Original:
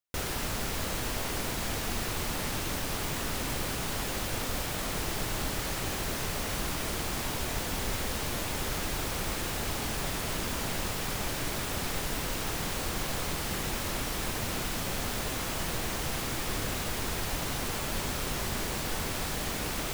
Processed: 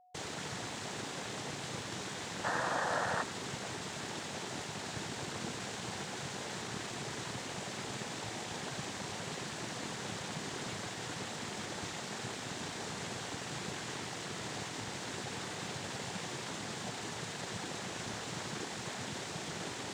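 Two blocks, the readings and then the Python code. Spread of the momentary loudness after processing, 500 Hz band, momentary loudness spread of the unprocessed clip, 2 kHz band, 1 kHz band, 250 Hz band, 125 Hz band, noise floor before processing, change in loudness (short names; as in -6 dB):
3 LU, -5.5 dB, 0 LU, -5.0 dB, -4.0 dB, -6.5 dB, -8.5 dB, -34 dBFS, -7.5 dB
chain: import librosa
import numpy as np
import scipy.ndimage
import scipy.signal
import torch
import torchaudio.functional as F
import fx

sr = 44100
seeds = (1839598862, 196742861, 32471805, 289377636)

p1 = fx.noise_vocoder(x, sr, seeds[0], bands=6)
p2 = p1 + 10.0 ** (-53.0 / 20.0) * np.sin(2.0 * np.pi * 730.0 * np.arange(len(p1)) / sr)
p3 = fx.spec_box(p2, sr, start_s=2.44, length_s=0.78, low_hz=470.0, high_hz=1900.0, gain_db=12)
p4 = np.sign(p3) * np.maximum(np.abs(p3) - 10.0 ** (-47.5 / 20.0), 0.0)
p5 = p3 + F.gain(torch.from_numpy(p4), -5.0).numpy()
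y = F.gain(torch.from_numpy(p5), -9.0).numpy()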